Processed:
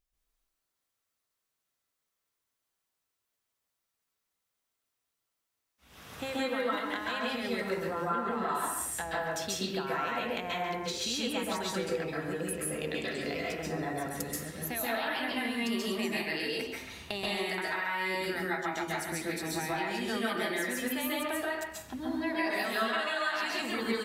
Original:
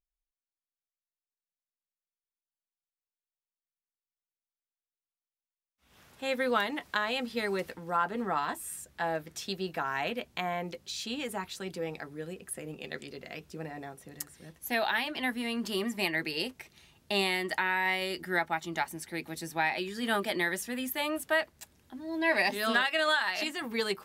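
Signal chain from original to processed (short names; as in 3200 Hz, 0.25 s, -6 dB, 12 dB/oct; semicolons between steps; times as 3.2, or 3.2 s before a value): compressor 10:1, threshold -42 dBFS, peak gain reduction 20 dB; speakerphone echo 0.14 s, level -6 dB; plate-style reverb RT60 0.57 s, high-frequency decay 0.6×, pre-delay 0.12 s, DRR -5 dB; gain +6.5 dB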